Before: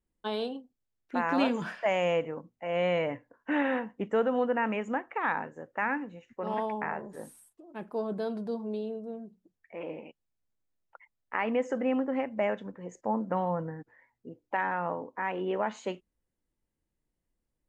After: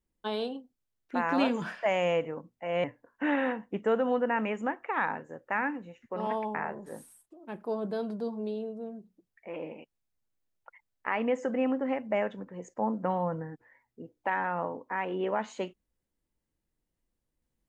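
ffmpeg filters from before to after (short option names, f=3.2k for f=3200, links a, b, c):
-filter_complex "[0:a]asplit=2[a][b];[a]atrim=end=2.842[c];[b]atrim=start=3.108[d];[c][d]acrossfade=d=0.004:c1=hsin:c2=hsin"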